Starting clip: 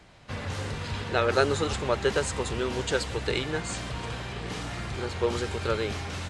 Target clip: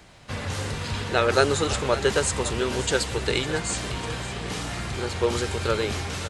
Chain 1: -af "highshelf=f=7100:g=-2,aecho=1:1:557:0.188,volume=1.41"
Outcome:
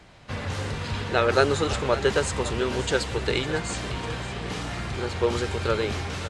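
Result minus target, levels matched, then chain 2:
8 kHz band -5.0 dB
-af "highshelf=f=7100:g=9.5,aecho=1:1:557:0.188,volume=1.41"

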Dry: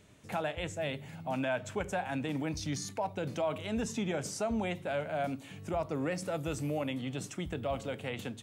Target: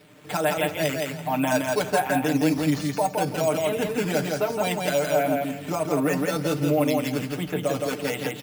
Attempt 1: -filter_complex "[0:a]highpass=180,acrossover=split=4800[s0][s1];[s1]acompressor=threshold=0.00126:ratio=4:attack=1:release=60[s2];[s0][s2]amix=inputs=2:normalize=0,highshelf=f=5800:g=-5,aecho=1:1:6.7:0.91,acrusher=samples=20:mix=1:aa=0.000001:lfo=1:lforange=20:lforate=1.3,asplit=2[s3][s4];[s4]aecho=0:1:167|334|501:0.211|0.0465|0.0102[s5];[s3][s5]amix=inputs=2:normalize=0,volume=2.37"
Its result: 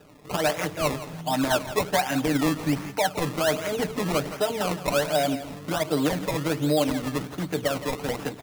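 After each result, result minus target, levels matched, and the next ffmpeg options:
echo-to-direct -10.5 dB; decimation with a swept rate: distortion +10 dB
-filter_complex "[0:a]highpass=180,acrossover=split=4800[s0][s1];[s1]acompressor=threshold=0.00126:ratio=4:attack=1:release=60[s2];[s0][s2]amix=inputs=2:normalize=0,highshelf=f=5800:g=-5,aecho=1:1:6.7:0.91,acrusher=samples=20:mix=1:aa=0.000001:lfo=1:lforange=20:lforate=1.3,asplit=2[s3][s4];[s4]aecho=0:1:167|334|501:0.708|0.156|0.0343[s5];[s3][s5]amix=inputs=2:normalize=0,volume=2.37"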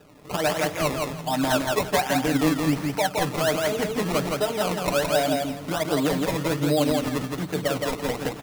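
decimation with a swept rate: distortion +10 dB
-filter_complex "[0:a]highpass=180,acrossover=split=4800[s0][s1];[s1]acompressor=threshold=0.00126:ratio=4:attack=1:release=60[s2];[s0][s2]amix=inputs=2:normalize=0,highshelf=f=5800:g=-5,aecho=1:1:6.7:0.91,acrusher=samples=6:mix=1:aa=0.000001:lfo=1:lforange=6:lforate=1.3,asplit=2[s3][s4];[s4]aecho=0:1:167|334|501:0.708|0.156|0.0343[s5];[s3][s5]amix=inputs=2:normalize=0,volume=2.37"

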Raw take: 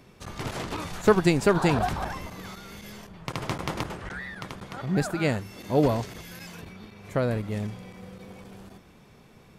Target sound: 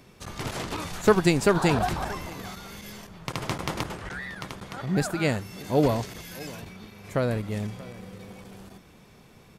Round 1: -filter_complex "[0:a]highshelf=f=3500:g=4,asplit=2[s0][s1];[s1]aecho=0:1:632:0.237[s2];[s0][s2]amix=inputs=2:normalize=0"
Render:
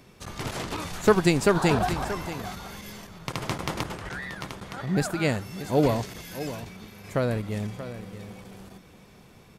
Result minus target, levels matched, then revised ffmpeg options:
echo-to-direct +7 dB
-filter_complex "[0:a]highshelf=f=3500:g=4,asplit=2[s0][s1];[s1]aecho=0:1:632:0.106[s2];[s0][s2]amix=inputs=2:normalize=0"

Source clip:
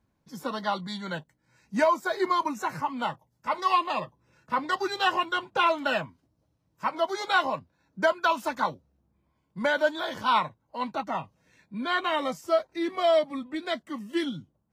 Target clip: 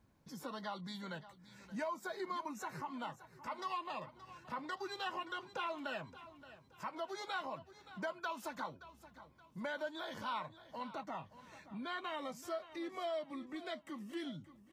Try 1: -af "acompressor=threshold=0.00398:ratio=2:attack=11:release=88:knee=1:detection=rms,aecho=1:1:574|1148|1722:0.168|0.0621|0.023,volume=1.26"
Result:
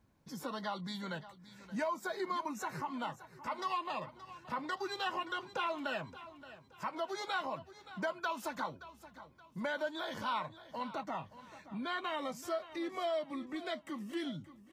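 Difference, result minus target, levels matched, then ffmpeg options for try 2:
compression: peak gain reduction -4 dB
-af "acompressor=threshold=0.0015:ratio=2:attack=11:release=88:knee=1:detection=rms,aecho=1:1:574|1148|1722:0.168|0.0621|0.023,volume=1.26"

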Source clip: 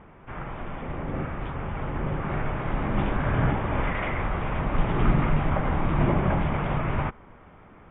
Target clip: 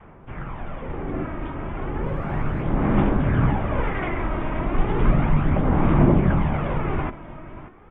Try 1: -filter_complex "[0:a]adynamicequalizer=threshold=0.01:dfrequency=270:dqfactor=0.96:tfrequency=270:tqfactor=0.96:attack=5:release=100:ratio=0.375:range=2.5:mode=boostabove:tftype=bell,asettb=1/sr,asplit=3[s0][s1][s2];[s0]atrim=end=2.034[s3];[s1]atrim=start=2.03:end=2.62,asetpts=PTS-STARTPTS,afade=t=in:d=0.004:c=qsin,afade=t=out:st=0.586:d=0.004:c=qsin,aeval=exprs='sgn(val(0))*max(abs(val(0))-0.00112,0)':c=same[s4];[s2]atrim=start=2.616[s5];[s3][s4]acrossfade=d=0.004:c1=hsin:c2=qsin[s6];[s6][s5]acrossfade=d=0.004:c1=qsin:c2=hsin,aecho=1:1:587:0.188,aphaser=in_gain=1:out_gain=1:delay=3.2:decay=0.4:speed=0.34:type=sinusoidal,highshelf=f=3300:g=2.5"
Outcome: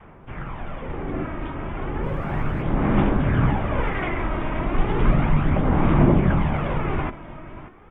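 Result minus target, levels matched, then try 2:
4 kHz band +3.0 dB
-filter_complex "[0:a]adynamicequalizer=threshold=0.01:dfrequency=270:dqfactor=0.96:tfrequency=270:tqfactor=0.96:attack=5:release=100:ratio=0.375:range=2.5:mode=boostabove:tftype=bell,asettb=1/sr,asplit=3[s0][s1][s2];[s0]atrim=end=2.034[s3];[s1]atrim=start=2.03:end=2.62,asetpts=PTS-STARTPTS,afade=t=in:d=0.004:c=qsin,afade=t=out:st=0.586:d=0.004:c=qsin,aeval=exprs='sgn(val(0))*max(abs(val(0))-0.00112,0)':c=same[s4];[s2]atrim=start=2.616[s5];[s3][s4]acrossfade=d=0.004:c1=hsin:c2=qsin[s6];[s6][s5]acrossfade=d=0.004:c1=qsin:c2=hsin,aecho=1:1:587:0.188,aphaser=in_gain=1:out_gain=1:delay=3.2:decay=0.4:speed=0.34:type=sinusoidal,highshelf=f=3300:g=-4.5"

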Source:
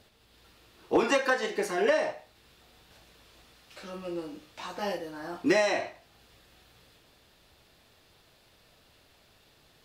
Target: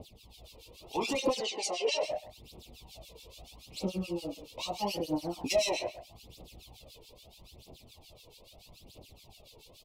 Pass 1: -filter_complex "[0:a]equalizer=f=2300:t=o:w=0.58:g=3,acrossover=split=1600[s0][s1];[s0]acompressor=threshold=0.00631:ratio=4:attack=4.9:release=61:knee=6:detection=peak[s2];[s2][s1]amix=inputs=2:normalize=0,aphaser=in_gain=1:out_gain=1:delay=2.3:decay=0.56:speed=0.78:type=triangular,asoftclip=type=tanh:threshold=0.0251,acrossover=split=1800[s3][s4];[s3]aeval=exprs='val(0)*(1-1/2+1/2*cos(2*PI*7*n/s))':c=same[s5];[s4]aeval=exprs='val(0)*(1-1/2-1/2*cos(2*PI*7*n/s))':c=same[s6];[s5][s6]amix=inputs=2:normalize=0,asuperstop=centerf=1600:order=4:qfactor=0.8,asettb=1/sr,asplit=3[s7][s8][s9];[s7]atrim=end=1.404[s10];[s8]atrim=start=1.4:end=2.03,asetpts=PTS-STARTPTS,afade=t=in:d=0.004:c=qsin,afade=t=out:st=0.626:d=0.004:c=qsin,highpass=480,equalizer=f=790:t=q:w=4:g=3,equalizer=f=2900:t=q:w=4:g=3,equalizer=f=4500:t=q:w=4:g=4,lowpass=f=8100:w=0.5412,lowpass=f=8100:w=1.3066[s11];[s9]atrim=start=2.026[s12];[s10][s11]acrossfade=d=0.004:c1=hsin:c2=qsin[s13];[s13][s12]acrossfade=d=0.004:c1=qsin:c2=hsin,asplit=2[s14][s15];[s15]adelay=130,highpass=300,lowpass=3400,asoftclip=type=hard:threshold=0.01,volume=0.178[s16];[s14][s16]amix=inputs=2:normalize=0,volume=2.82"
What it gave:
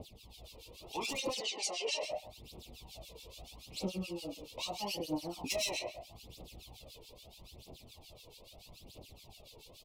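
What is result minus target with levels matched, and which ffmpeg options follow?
compression: peak gain reduction +7 dB; saturation: distortion +6 dB
-filter_complex "[0:a]equalizer=f=2300:t=o:w=0.58:g=3,acrossover=split=1600[s0][s1];[s0]acompressor=threshold=0.0188:ratio=4:attack=4.9:release=61:knee=6:detection=peak[s2];[s2][s1]amix=inputs=2:normalize=0,aphaser=in_gain=1:out_gain=1:delay=2.3:decay=0.56:speed=0.78:type=triangular,asoftclip=type=tanh:threshold=0.0596,acrossover=split=1800[s3][s4];[s3]aeval=exprs='val(0)*(1-1/2+1/2*cos(2*PI*7*n/s))':c=same[s5];[s4]aeval=exprs='val(0)*(1-1/2-1/2*cos(2*PI*7*n/s))':c=same[s6];[s5][s6]amix=inputs=2:normalize=0,asuperstop=centerf=1600:order=4:qfactor=0.8,asettb=1/sr,asplit=3[s7][s8][s9];[s7]atrim=end=1.404[s10];[s8]atrim=start=1.4:end=2.03,asetpts=PTS-STARTPTS,afade=t=in:d=0.004:c=qsin,afade=t=out:st=0.626:d=0.004:c=qsin,highpass=480,equalizer=f=790:t=q:w=4:g=3,equalizer=f=2900:t=q:w=4:g=3,equalizer=f=4500:t=q:w=4:g=4,lowpass=f=8100:w=0.5412,lowpass=f=8100:w=1.3066[s11];[s9]atrim=start=2.026[s12];[s10][s11]acrossfade=d=0.004:c1=hsin:c2=qsin[s13];[s13][s12]acrossfade=d=0.004:c1=qsin:c2=hsin,asplit=2[s14][s15];[s15]adelay=130,highpass=300,lowpass=3400,asoftclip=type=hard:threshold=0.01,volume=0.178[s16];[s14][s16]amix=inputs=2:normalize=0,volume=2.82"

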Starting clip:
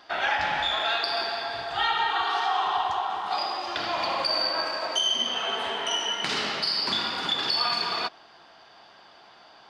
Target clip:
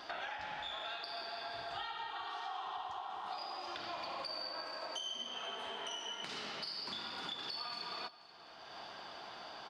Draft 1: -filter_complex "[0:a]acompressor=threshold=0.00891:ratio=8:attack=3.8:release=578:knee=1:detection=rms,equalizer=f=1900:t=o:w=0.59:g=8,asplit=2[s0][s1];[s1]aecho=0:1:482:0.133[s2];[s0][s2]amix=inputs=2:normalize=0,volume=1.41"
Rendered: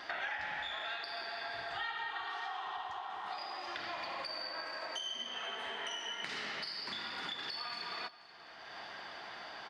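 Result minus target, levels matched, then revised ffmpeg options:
2 kHz band +4.5 dB
-filter_complex "[0:a]acompressor=threshold=0.00891:ratio=8:attack=3.8:release=578:knee=1:detection=rms,equalizer=f=1900:t=o:w=0.59:g=-2,asplit=2[s0][s1];[s1]aecho=0:1:482:0.133[s2];[s0][s2]amix=inputs=2:normalize=0,volume=1.41"

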